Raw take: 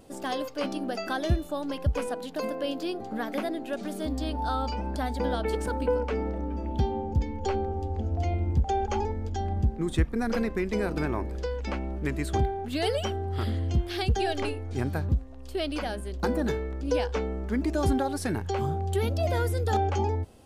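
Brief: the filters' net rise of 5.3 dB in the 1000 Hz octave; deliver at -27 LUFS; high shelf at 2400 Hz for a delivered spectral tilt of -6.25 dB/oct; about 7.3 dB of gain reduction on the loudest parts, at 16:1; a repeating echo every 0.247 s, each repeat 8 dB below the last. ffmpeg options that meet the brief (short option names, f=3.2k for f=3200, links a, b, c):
-af "equalizer=f=1k:t=o:g=8.5,highshelf=f=2.4k:g=-7.5,acompressor=threshold=-26dB:ratio=16,aecho=1:1:247|494|741|988|1235:0.398|0.159|0.0637|0.0255|0.0102,volume=4.5dB"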